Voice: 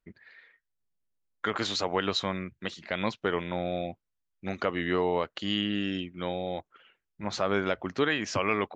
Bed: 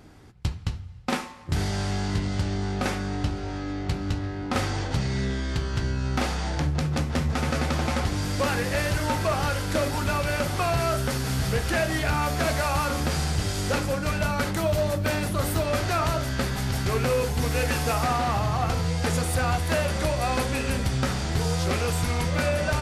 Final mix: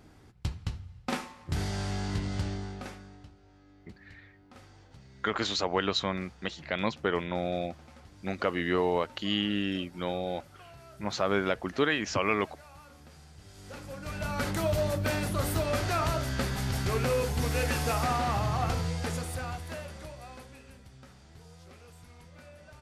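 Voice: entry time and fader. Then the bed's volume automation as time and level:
3.80 s, 0.0 dB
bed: 0:02.47 −5.5 dB
0:03.36 −27 dB
0:13.35 −27 dB
0:14.47 −4 dB
0:18.72 −4 dB
0:20.84 −27 dB

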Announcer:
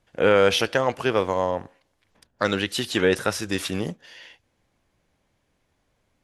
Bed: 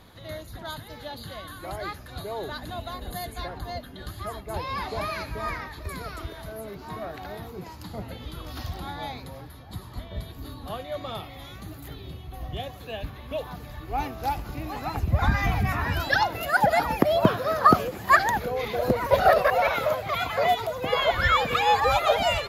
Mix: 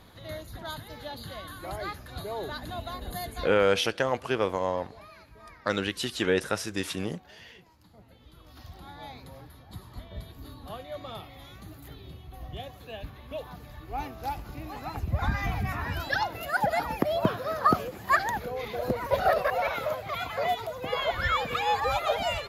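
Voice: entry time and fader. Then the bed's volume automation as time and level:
3.25 s, −5.0 dB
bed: 0:03.41 −1.5 dB
0:03.77 −19 dB
0:08.00 −19 dB
0:09.35 −5.5 dB

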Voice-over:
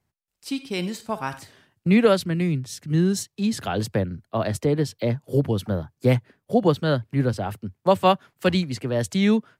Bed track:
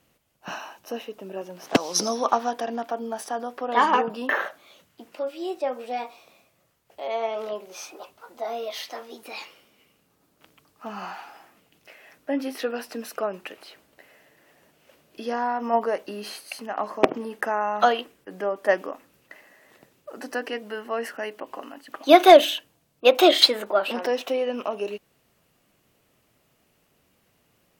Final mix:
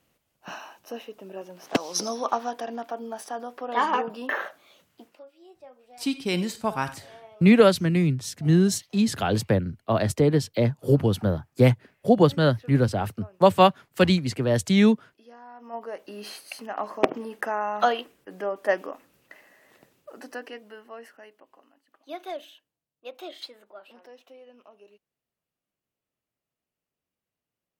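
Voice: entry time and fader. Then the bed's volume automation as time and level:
5.55 s, +1.5 dB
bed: 0:05.03 −4 dB
0:05.27 −21 dB
0:15.44 −21 dB
0:16.25 −2.5 dB
0:19.91 −2.5 dB
0:21.91 −24 dB

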